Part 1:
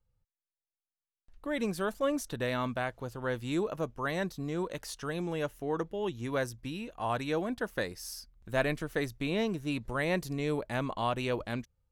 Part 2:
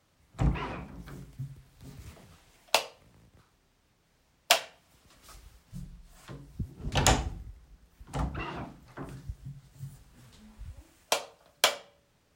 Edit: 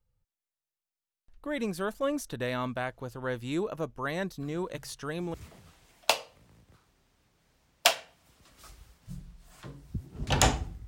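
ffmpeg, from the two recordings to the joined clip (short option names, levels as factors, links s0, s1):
-filter_complex "[1:a]asplit=2[s0][s1];[0:a]apad=whole_dur=10.87,atrim=end=10.87,atrim=end=5.342[s2];[s1]atrim=start=1.988:end=7.52[s3];[s0]atrim=start=1.05:end=1.99,asetpts=PTS-STARTPTS,volume=0.316,afade=t=in:d=0.004:c=hsin,afade=t=out:st=0.936:d=0.004:c=hsin,adelay=4400[s4];[s2][s3]acrossfade=d=0.004:c1=hsin:c2=hsin[s5];[s5][s4]amix=inputs=2:normalize=0"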